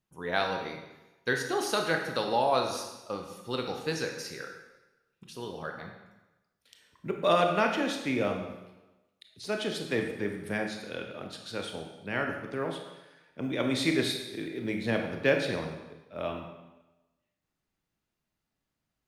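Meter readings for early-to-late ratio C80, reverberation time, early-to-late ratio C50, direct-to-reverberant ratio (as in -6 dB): 7.0 dB, 1.1 s, 5.0 dB, 3.0 dB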